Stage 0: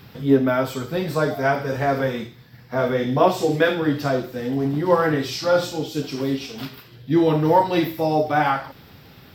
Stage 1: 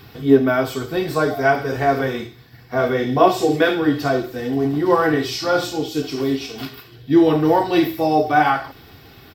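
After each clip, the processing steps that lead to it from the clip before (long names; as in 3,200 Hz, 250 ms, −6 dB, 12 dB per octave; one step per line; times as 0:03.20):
comb filter 2.7 ms, depth 47%
level +2 dB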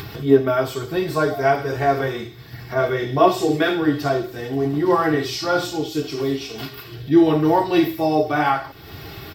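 upward compression, threshold −24 dBFS
notch comb filter 250 Hz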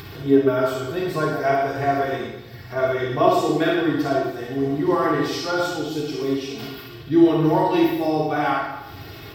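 convolution reverb RT60 0.95 s, pre-delay 38 ms, DRR −0.5 dB
level −5 dB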